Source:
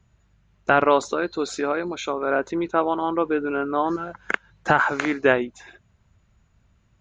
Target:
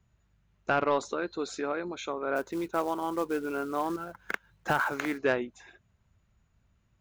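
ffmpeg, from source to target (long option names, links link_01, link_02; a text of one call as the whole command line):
ffmpeg -i in.wav -filter_complex "[0:a]asoftclip=type=tanh:threshold=-7.5dB,asplit=3[link_01][link_02][link_03];[link_01]afade=type=out:start_time=2.35:duration=0.02[link_04];[link_02]acrusher=bits=5:mode=log:mix=0:aa=0.000001,afade=type=in:start_time=2.35:duration=0.02,afade=type=out:start_time=5.17:duration=0.02[link_05];[link_03]afade=type=in:start_time=5.17:duration=0.02[link_06];[link_04][link_05][link_06]amix=inputs=3:normalize=0,volume=-7.5dB" out.wav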